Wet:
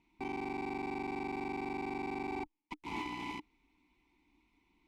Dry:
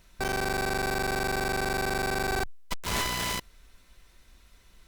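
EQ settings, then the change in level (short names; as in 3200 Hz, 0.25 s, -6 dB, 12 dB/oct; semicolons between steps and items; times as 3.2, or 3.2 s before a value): vowel filter u; low shelf 76 Hz +9 dB; notch 1300 Hz, Q 19; +4.5 dB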